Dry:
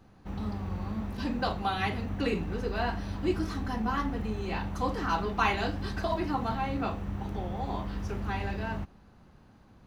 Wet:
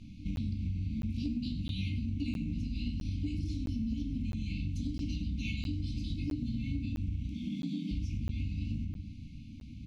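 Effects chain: tapped delay 77/98 ms -18/-13.5 dB; dynamic EQ 2300 Hz, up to -8 dB, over -48 dBFS, Q 0.71; 7.27–7.91 steep high-pass 160 Hz 72 dB/oct; FFT band-reject 320–2100 Hz; reverb RT60 0.40 s, pre-delay 15 ms, DRR 3 dB; compressor 6:1, threshold -40 dBFS, peak gain reduction 14.5 dB; Bessel low-pass 6000 Hz, order 2; crackling interface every 0.66 s, samples 512, zero, from 0.36; gain +8 dB

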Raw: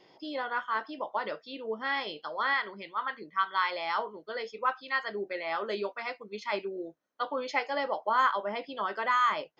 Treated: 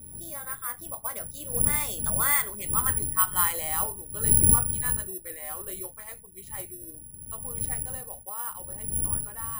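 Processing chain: wind noise 130 Hz -28 dBFS; Doppler pass-by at 2.74, 32 m/s, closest 28 m; careless resampling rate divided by 4×, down none, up zero stuff

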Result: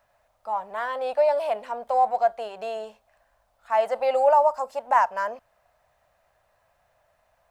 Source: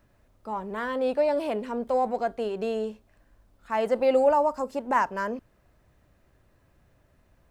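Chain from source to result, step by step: resonant low shelf 470 Hz -13 dB, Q 3

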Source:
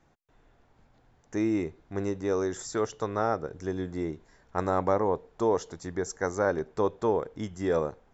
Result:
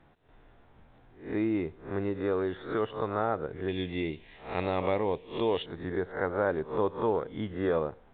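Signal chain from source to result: spectral swells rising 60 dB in 0.38 s; in parallel at +1.5 dB: compressor, threshold -35 dBFS, peak gain reduction 15 dB; 3.68–5.66 on the sum: resonant high shelf 1900 Hz +10 dB, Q 3; gain -4.5 dB; µ-law 64 kbps 8000 Hz

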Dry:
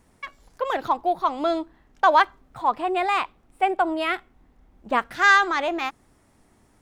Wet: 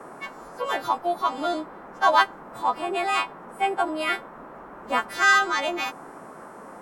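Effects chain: frequency quantiser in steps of 2 st; band noise 160–1300 Hz -40 dBFS; gain -2.5 dB

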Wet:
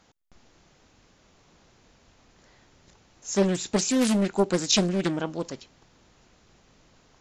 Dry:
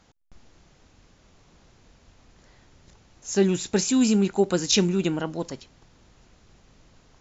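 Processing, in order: low shelf 130 Hz -8 dB; Doppler distortion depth 0.56 ms

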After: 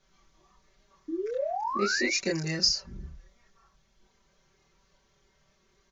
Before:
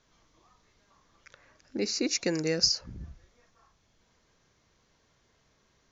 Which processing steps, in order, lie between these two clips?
comb 5.2 ms, depth 99%; painted sound rise, 1.08–2.16, 300–2500 Hz -28 dBFS; chorus voices 6, 0.45 Hz, delay 26 ms, depth 1.7 ms

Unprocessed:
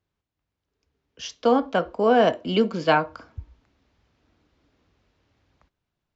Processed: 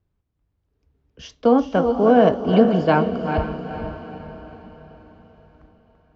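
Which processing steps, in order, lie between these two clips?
reverse delay 0.241 s, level -8.5 dB; tilt -3 dB/oct; diffused feedback echo 0.46 s, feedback 48%, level -9 dB

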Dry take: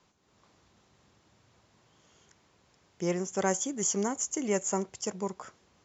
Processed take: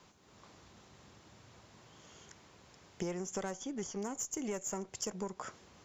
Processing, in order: one diode to ground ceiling -21 dBFS; compressor 16:1, threshold -41 dBFS, peak gain reduction 16.5 dB; 3.51–4.02 LPF 5500 Hz 24 dB/oct; gain +6 dB

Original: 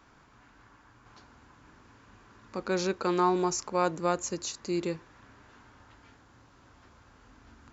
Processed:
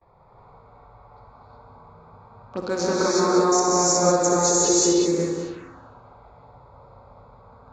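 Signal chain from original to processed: Wiener smoothing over 15 samples; gate with hold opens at -57 dBFS; in parallel at +1.5 dB: level quantiser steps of 9 dB; 4.13–4.79 on the sum: comb 2.3 ms, depth 91%; multi-head echo 63 ms, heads first and third, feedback 49%, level -9 dB; compressor 10:1, threshold -24 dBFS, peak gain reduction 10.5 dB; bell 940 Hz -4 dB 1.4 oct; envelope phaser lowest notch 240 Hz, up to 2900 Hz, full sweep at -28.5 dBFS; low-pass opened by the level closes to 2600 Hz, open at -26.5 dBFS; low shelf 310 Hz -8.5 dB; non-linear reverb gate 0.39 s rising, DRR -6 dB; gain +7 dB

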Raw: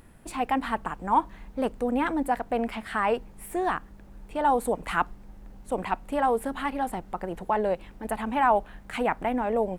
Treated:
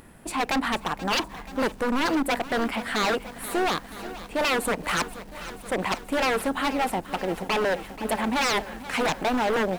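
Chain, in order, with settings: low shelf 100 Hz -9.5 dB; wavefolder -25 dBFS; lo-fi delay 0.481 s, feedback 80%, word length 8-bit, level -14.5 dB; gain +6.5 dB

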